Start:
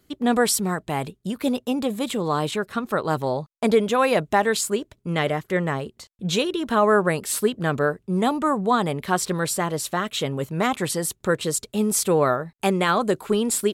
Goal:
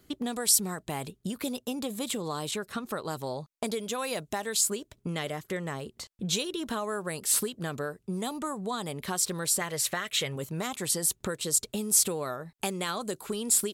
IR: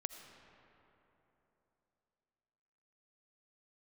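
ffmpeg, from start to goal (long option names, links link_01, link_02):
-filter_complex "[0:a]asettb=1/sr,asplit=3[link_01][link_02][link_03];[link_01]atrim=end=9.614[link_04];[link_02]atrim=start=9.61:end=10.36,asetpts=PTS-STARTPTS,afade=type=in:duration=0.004:curve=qsin,afade=type=out:start_time=0.746:duration=0.004:curve=qsin,equalizer=frequency=125:width_type=o:width=1:gain=5,equalizer=frequency=250:width_type=o:width=1:gain=-6,equalizer=frequency=500:width_type=o:width=1:gain=4,equalizer=frequency=2000:width_type=o:width=1:gain=12[link_05];[link_03]atrim=start=10.356[link_06];[link_04][link_05]acrossfade=duration=0.004:curve1=hsin:curve2=qsin[link_07];[link_07][link_06]acrossfade=duration=0.004:curve1=qsin:curve2=hsin,acrossover=split=4200[link_08][link_09];[link_08]acompressor=threshold=-33dB:ratio=6[link_10];[link_10][link_09]amix=inputs=2:normalize=0,volume=1.5dB"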